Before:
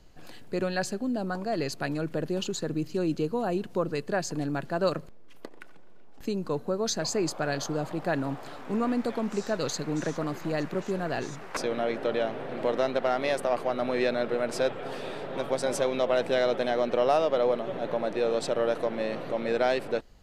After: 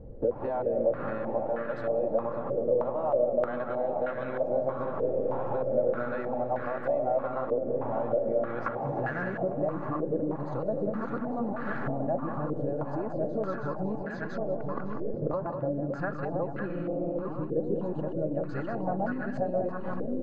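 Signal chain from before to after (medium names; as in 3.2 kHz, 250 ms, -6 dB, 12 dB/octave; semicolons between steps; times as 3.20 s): reverse the whole clip; feedback delay 1007 ms, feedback 44%, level -15 dB; in parallel at -0.5 dB: gain riding; on the sum: peaking EQ 120 Hz +14 dB 0.81 oct; comb 3.6 ms, depth 32%; compression 16:1, threshold -32 dBFS, peak gain reduction 22 dB; on a send: multi-tap echo 194/322/557/852 ms -6.5/-10.5/-12/-9.5 dB; on the sum: spectral freeze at 16.70 s, 0.52 s; step-sequenced low-pass 3.2 Hz 480–1600 Hz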